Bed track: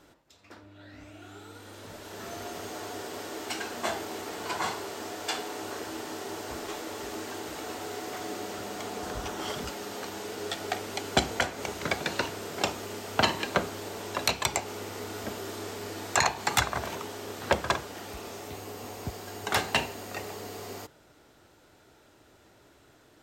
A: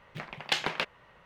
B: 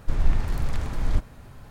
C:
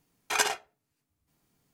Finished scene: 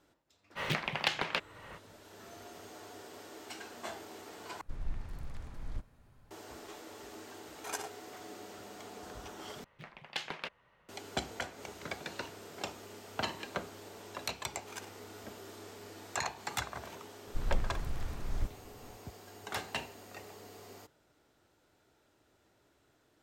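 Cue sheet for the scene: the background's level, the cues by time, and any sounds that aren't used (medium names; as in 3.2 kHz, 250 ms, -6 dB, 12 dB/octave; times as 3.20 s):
bed track -11.5 dB
0.55 s: add A -1.5 dB, fades 0.05 s + three bands compressed up and down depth 100%
4.61 s: replace with B -17 dB
7.34 s: add C -10 dB + peaking EQ 2.7 kHz -8.5 dB 2.1 oct
9.64 s: replace with A -10 dB
14.37 s: add C -17.5 dB + power-law waveshaper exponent 1.4
17.27 s: add B -11.5 dB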